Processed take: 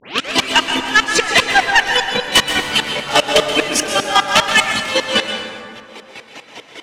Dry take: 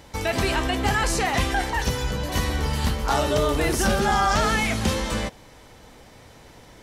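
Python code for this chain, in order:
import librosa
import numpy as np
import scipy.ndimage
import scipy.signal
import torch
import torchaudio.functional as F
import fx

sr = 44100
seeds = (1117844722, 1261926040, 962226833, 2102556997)

p1 = fx.tape_start_head(x, sr, length_s=0.32)
p2 = scipy.signal.sosfilt(scipy.signal.butter(2, 8900.0, 'lowpass', fs=sr, output='sos'), p1)
p3 = fx.dereverb_blind(p2, sr, rt60_s=1.4)
p4 = scipy.signal.sosfilt(scipy.signal.butter(2, 300.0, 'highpass', fs=sr, output='sos'), p3)
p5 = fx.peak_eq(p4, sr, hz=2800.0, db=13.0, octaves=1.0)
p6 = fx.rider(p5, sr, range_db=10, speed_s=0.5)
p7 = p5 + (p6 * librosa.db_to_amplitude(-0.5))
p8 = fx.fold_sine(p7, sr, drive_db=9, ceiling_db=-0.5)
p9 = fx.volume_shaper(p8, sr, bpm=150, per_beat=2, depth_db=-23, release_ms=151.0, shape='slow start')
p10 = p9 + 10.0 ** (-15.5 / 20.0) * np.pad(p9, (int(126 * sr / 1000.0), 0))[:len(p9)]
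p11 = fx.rev_plate(p10, sr, seeds[0], rt60_s=2.3, hf_ratio=0.5, predelay_ms=115, drr_db=5.0)
y = p11 * librosa.db_to_amplitude(-4.5)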